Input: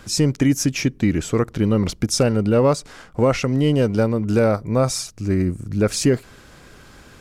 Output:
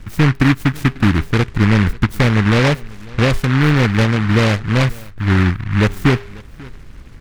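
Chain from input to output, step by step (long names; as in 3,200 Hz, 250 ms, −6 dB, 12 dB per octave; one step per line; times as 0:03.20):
spectral tilt −4 dB per octave
hum removal 403.8 Hz, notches 8
on a send: single-tap delay 543 ms −22.5 dB
on the sum: short delay modulated by noise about 1,500 Hz, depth 0.25 ms
level −4.5 dB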